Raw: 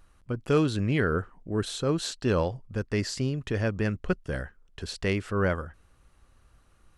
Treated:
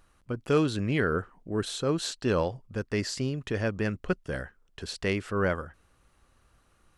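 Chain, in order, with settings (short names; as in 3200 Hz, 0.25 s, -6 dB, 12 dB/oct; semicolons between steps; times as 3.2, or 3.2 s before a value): low shelf 110 Hz -7 dB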